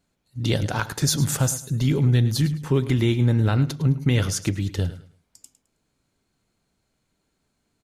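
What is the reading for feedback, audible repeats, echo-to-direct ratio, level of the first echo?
26%, 2, -14.5 dB, -15.0 dB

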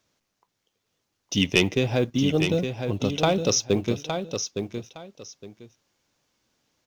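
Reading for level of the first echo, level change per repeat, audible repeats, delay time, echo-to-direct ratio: -7.0 dB, -13.0 dB, 2, 863 ms, -7.0 dB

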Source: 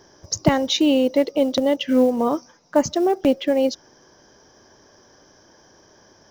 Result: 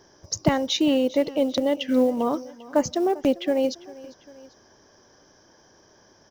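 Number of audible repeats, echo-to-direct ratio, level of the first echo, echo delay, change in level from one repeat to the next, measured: 2, -19.0 dB, -20.0 dB, 397 ms, -5.0 dB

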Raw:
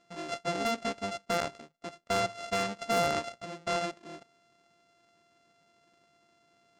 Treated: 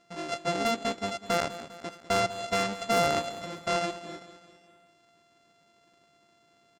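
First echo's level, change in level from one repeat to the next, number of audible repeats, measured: -14.5 dB, -5.5 dB, 4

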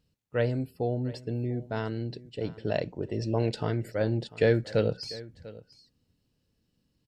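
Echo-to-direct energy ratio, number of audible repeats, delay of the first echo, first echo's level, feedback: -19.0 dB, 1, 695 ms, -19.0 dB, no regular repeats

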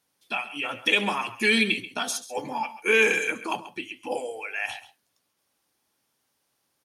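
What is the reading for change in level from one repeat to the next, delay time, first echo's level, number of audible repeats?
no regular repeats, 135 ms, -14.5 dB, 1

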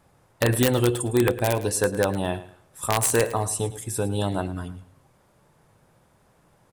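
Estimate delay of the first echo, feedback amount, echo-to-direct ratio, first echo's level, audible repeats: 108 ms, 27%, -14.5 dB, -15.0 dB, 2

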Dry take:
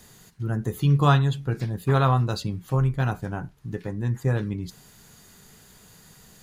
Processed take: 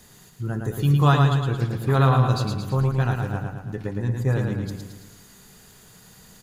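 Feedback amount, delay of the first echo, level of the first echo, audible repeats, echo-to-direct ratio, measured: 54%, 111 ms, -4.0 dB, 6, -2.5 dB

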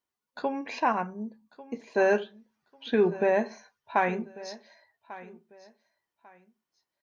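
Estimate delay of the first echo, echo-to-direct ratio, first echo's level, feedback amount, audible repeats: 1145 ms, -17.5 dB, -18.0 dB, 25%, 2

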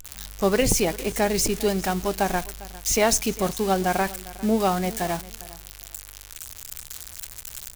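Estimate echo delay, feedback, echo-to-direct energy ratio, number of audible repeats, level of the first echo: 402 ms, 19%, -19.0 dB, 2, -19.0 dB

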